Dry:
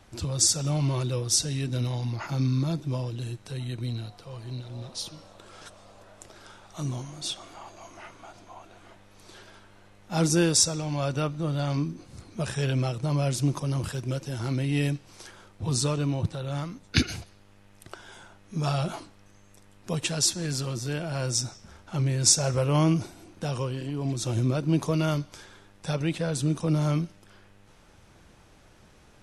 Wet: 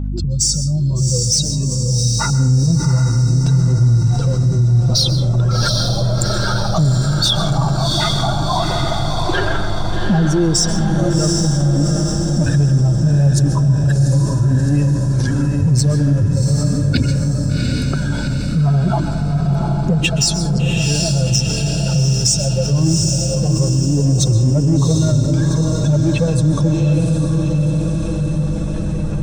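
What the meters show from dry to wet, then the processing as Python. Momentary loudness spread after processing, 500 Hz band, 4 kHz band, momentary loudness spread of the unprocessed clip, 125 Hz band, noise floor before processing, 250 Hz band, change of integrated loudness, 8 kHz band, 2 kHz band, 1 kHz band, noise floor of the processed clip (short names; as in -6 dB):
5 LU, +9.5 dB, +11.5 dB, 18 LU, +15.5 dB, -56 dBFS, +13.0 dB, +11.5 dB, +8.0 dB, +11.0 dB, +12.0 dB, -19 dBFS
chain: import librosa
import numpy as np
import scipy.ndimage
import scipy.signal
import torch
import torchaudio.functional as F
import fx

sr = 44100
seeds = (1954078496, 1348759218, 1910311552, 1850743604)

p1 = fx.spec_expand(x, sr, power=2.2)
p2 = fx.recorder_agc(p1, sr, target_db=-10.0, rise_db_per_s=6.6, max_gain_db=30)
p3 = np.clip(p2, -10.0 ** (-17.0 / 20.0), 10.0 ** (-17.0 / 20.0))
p4 = p2 + F.gain(torch.from_numpy(p3), -4.0).numpy()
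p5 = fx.add_hum(p4, sr, base_hz=50, snr_db=11)
p6 = fx.echo_diffused(p5, sr, ms=751, feedback_pct=57, wet_db=-3.5)
p7 = fx.rev_plate(p6, sr, seeds[0], rt60_s=0.7, hf_ratio=0.5, predelay_ms=115, drr_db=12.0)
p8 = fx.env_flatten(p7, sr, amount_pct=50)
y = F.gain(torch.from_numpy(p8), -4.0).numpy()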